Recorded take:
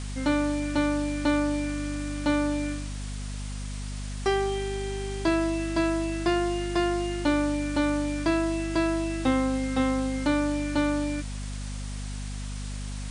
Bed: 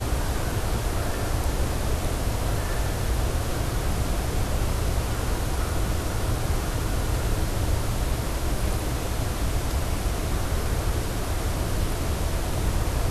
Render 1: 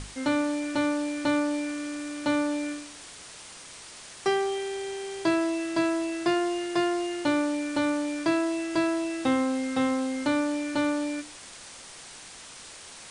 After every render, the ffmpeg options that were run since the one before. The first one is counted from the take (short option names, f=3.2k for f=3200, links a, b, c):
-af "bandreject=f=50:t=h:w=6,bandreject=f=100:t=h:w=6,bandreject=f=150:t=h:w=6,bandreject=f=200:t=h:w=6,bandreject=f=250:t=h:w=6,bandreject=f=300:t=h:w=6"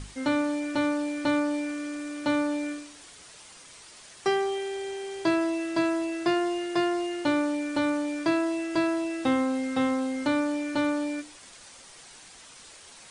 -af "afftdn=nr=6:nf=-46"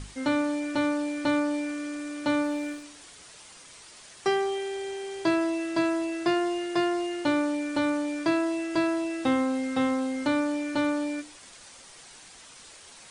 -filter_complex "[0:a]asplit=3[a][b][c];[a]afade=t=out:st=2.42:d=0.02[d];[b]aeval=exprs='sgn(val(0))*max(abs(val(0))-0.00335,0)':c=same,afade=t=in:st=2.42:d=0.02,afade=t=out:st=2.82:d=0.02[e];[c]afade=t=in:st=2.82:d=0.02[f];[d][e][f]amix=inputs=3:normalize=0"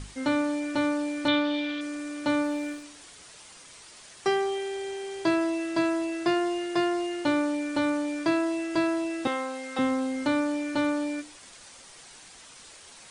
-filter_complex "[0:a]asettb=1/sr,asplit=3[a][b][c];[a]atrim=end=1.284[d];[b]atrim=start=1.28:end=1.81,asetpts=PTS-STARTPTS,afade=t=in:d=0.004:c=qsin,afade=t=out:st=0.526:d=0.004:c=qsin,lowpass=f=3.5k:t=q:w=8.1[e];[c]atrim=start=1.806[f];[d][e]acrossfade=d=0.004:c1=hsin:c2=qsin[g];[g][f]acrossfade=d=0.004:c1=qsin:c2=hsin,asettb=1/sr,asplit=3[h][i][j];[h]atrim=end=9.274[k];[i]atrim=start=9.27:end=9.79,asetpts=PTS-STARTPTS,afade=t=in:d=0.004:c=qsin,afade=t=out:st=0.516:d=0.004:c=qsin,highpass=520[l];[j]atrim=start=9.786[m];[k][l]acrossfade=d=0.004:c1=hsin:c2=qsin[n];[n][m]acrossfade=d=0.004:c1=qsin:c2=hsin"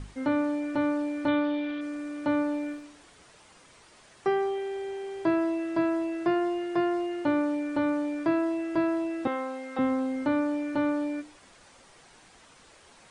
-filter_complex "[0:a]acrossover=split=2700[a][b];[b]acompressor=threshold=-46dB:ratio=4:attack=1:release=60[c];[a][c]amix=inputs=2:normalize=0,highshelf=f=2.6k:g=-10.5"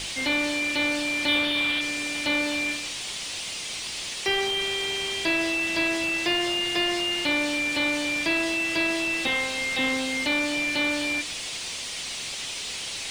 -filter_complex "[0:a]aexciter=amount=15.4:drive=9.7:freq=2.2k,asplit=2[a][b];[b]highpass=f=720:p=1,volume=14dB,asoftclip=type=tanh:threshold=-14.5dB[c];[a][c]amix=inputs=2:normalize=0,lowpass=f=1.2k:p=1,volume=-6dB"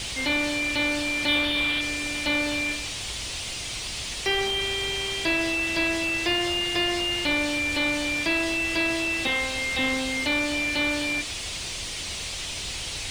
-filter_complex "[1:a]volume=-17dB[a];[0:a][a]amix=inputs=2:normalize=0"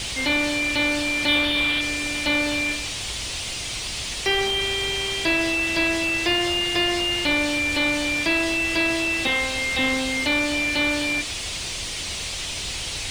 -af "volume=3dB"